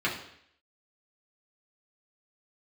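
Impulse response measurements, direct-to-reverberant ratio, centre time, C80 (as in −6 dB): −6.0 dB, 28 ms, 10.5 dB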